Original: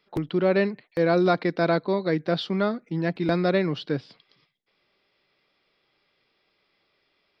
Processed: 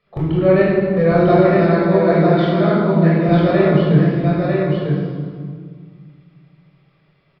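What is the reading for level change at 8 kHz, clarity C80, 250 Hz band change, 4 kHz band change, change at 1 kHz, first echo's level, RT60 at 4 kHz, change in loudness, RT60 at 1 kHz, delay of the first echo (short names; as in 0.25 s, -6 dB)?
n/a, -1.5 dB, +11.5 dB, +1.5 dB, +9.0 dB, -4.0 dB, 1.3 s, +9.5 dB, 2.0 s, 0.948 s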